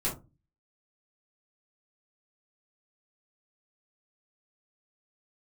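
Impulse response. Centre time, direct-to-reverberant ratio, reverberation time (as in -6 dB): 26 ms, -8.0 dB, 0.25 s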